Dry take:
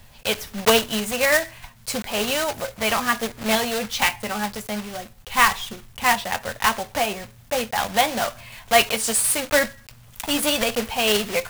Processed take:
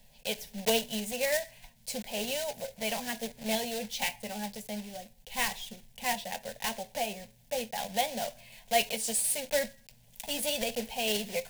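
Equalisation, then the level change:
phaser with its sweep stopped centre 330 Hz, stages 6
−8.5 dB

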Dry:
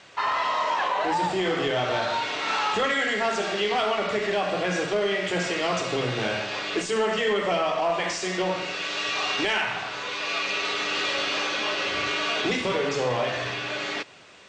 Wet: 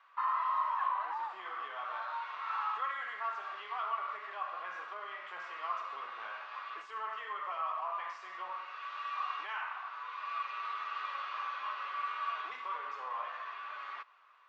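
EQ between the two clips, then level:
four-pole ladder band-pass 1,200 Hz, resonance 75%
−3.5 dB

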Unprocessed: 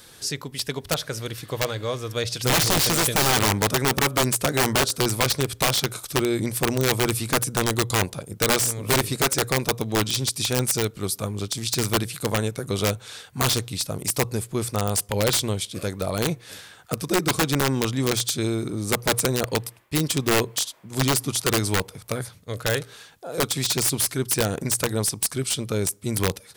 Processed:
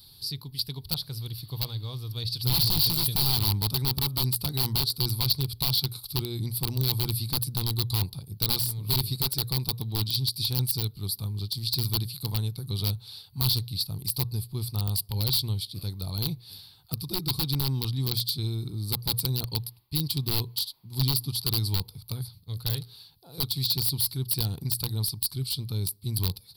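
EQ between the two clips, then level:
drawn EQ curve 130 Hz 0 dB, 220 Hz −11 dB, 390 Hz −15 dB, 580 Hz −25 dB, 880 Hz −11 dB, 1,700 Hz −26 dB, 3,100 Hz −10 dB, 4,500 Hz +5 dB, 6,500 Hz −26 dB, 12,000 Hz +1 dB
0.0 dB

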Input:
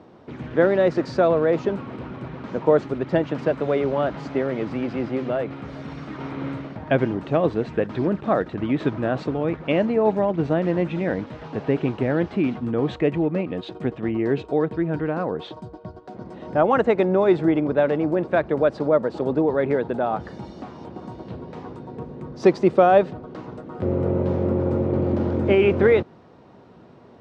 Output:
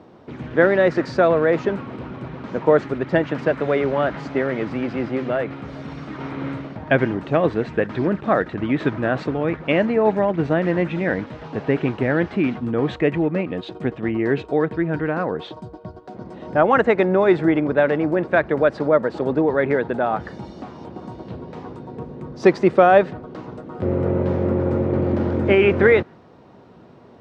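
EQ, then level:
dynamic equaliser 1,800 Hz, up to +7 dB, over −42 dBFS, Q 1.5
+1.5 dB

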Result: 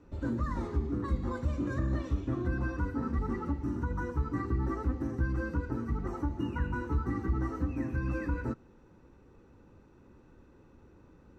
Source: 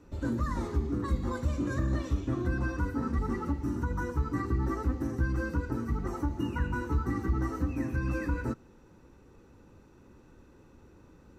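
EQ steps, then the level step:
low-pass filter 3,000 Hz 6 dB per octave
−1.5 dB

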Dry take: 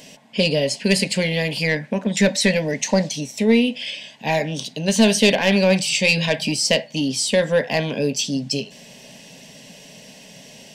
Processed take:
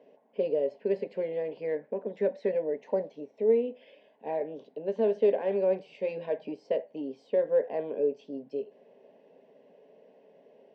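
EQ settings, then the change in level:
four-pole ladder band-pass 480 Hz, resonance 55%
high-frequency loss of the air 75 metres
+1.0 dB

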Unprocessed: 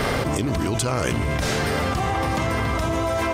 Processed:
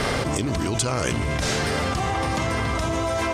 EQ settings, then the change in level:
low-pass filter 8,100 Hz 12 dB per octave
high-shelf EQ 5,400 Hz +9 dB
−1.5 dB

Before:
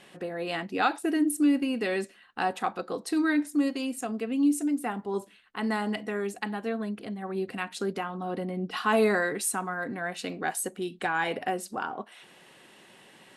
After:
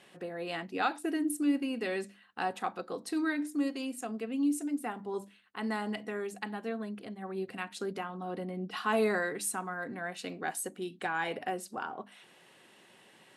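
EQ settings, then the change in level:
high-pass filter 56 Hz
mains-hum notches 50/100/150/200/250/300 Hz
−5.0 dB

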